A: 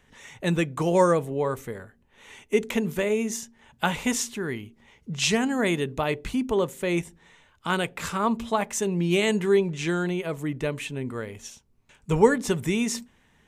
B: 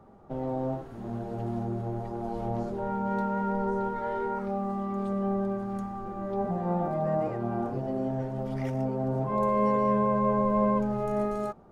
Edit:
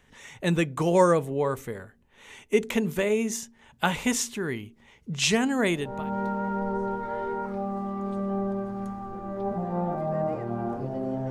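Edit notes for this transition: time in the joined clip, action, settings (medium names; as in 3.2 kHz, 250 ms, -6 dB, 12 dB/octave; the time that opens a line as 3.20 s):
A
5.88 s: go over to B from 2.81 s, crossfade 0.46 s linear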